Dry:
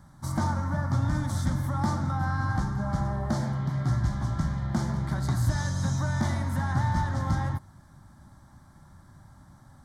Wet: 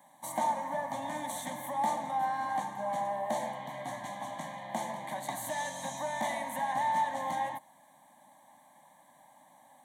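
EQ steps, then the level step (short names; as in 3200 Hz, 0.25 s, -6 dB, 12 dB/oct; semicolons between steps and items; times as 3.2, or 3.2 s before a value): HPF 330 Hz 24 dB/oct; bell 1300 Hz -12.5 dB 0.44 oct; fixed phaser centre 1400 Hz, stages 6; +6.5 dB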